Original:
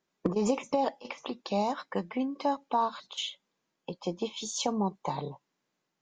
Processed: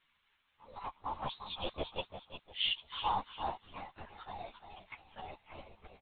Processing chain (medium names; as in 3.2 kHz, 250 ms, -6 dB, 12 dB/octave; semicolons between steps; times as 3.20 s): reverse the whole clip; Doppler pass-by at 2.09 s, 24 m/s, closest 8 m; transient shaper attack +6 dB, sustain -7 dB; crackle 590 per s -53 dBFS; spectral noise reduction 8 dB; modulation noise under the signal 22 dB; high-pass 980 Hz 12 dB/octave; feedback delay 348 ms, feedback 31%, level -9 dB; LPC vocoder at 8 kHz whisper; three-phase chorus; trim +8.5 dB